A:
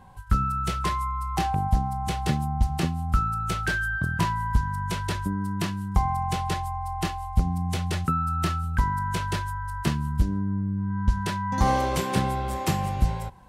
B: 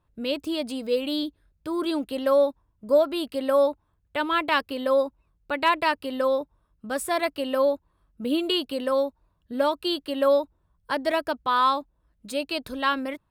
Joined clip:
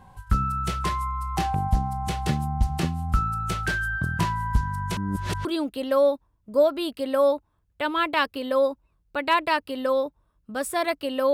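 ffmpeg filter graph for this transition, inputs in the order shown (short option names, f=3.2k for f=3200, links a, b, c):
-filter_complex "[0:a]apad=whole_dur=11.33,atrim=end=11.33,asplit=2[a][b];[a]atrim=end=4.972[c];[b]atrim=start=4.968:end=5.452,asetpts=PTS-STARTPTS,areverse[d];[1:a]atrim=start=1.798:end=7.68[e];[c][d]acrossfade=d=0.004:c1=hsin:c2=hsin[f];[f][e]acrossfade=d=0.004:c1=hsin:c2=hsin"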